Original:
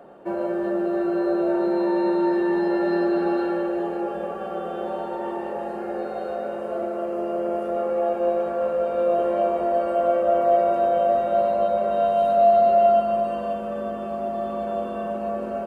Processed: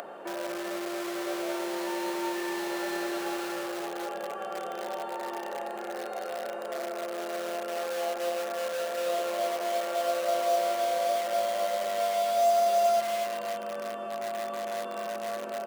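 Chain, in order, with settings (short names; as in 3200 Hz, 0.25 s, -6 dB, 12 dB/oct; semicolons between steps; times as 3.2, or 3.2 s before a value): in parallel at -11 dB: wrapped overs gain 22 dB; on the sum: upward compressor, threshold -24 dBFS; HPF 1100 Hz 6 dB/oct; gain -2 dB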